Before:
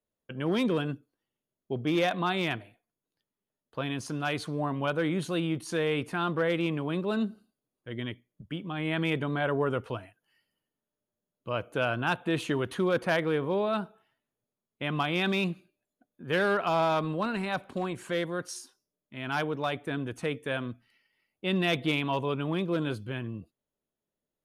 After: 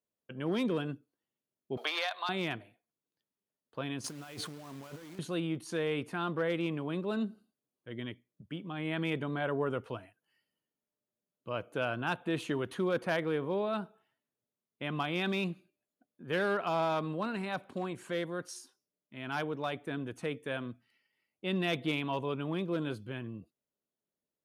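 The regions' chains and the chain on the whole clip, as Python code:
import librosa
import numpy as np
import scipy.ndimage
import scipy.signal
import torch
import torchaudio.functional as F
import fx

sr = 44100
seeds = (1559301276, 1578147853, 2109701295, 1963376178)

y = fx.chain(x, sr, fx.highpass(hz=730.0, slope=24),
    fx.peak_eq(hz=4300.0, db=13.0, octaves=0.34),
    fx.band_squash(depth_pct=100), at=(1.77, 2.29))
y = fx.chain(y, sr, fx.over_compress(threshold_db=-41.0, ratio=-1.0),
    fx.quant_dither(seeds[0], bits=8, dither='none'), at=(4.04, 5.19))
y = fx.highpass(y, sr, hz=190.0, slope=6)
y = fx.low_shelf(y, sr, hz=360.0, db=5.0)
y = y * 10.0 ** (-5.5 / 20.0)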